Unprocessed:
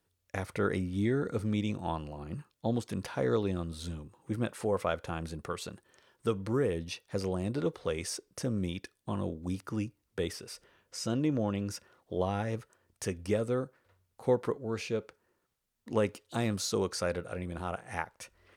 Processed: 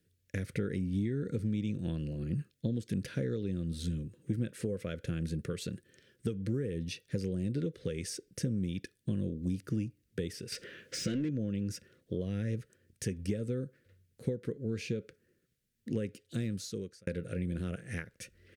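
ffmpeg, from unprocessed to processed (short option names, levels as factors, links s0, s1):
-filter_complex "[0:a]asettb=1/sr,asplit=3[s0][s1][s2];[s0]atrim=end=10.524[s3];[s1]atrim=start=10.52:end=11.29,asetpts=PTS-STARTPTS,afade=t=in:d=0.004:c=qsin,afade=t=out:st=0.766:d=0.004:c=qsin,asplit=2[s4][s5];[s5]highpass=f=720:p=1,volume=17.8,asoftclip=type=tanh:threshold=0.112[s6];[s4][s6]amix=inputs=2:normalize=0,lowpass=f=2500:p=1,volume=0.501[s7];[s2]atrim=start=11.286[s8];[s3][s7]acrossfade=d=0.004:c1=hsin:c2=qsin[s9];[s9][s8]acrossfade=d=0.004:c1=qsin:c2=hsin,asplit=2[s10][s11];[s10]atrim=end=17.07,asetpts=PTS-STARTPTS,afade=t=out:st=15.94:d=1.13[s12];[s11]atrim=start=17.07,asetpts=PTS-STARTPTS,afade=t=in:d=0.004:c=hsin[s13];[s12][s13]concat=n=2:v=0:a=1,firequalizer=gain_entry='entry(510,0);entry(830,-27);entry(1600,1)':delay=0.05:min_phase=1,acompressor=threshold=0.0178:ratio=10,equalizer=f=150:t=o:w=2.1:g=10,volume=0.891"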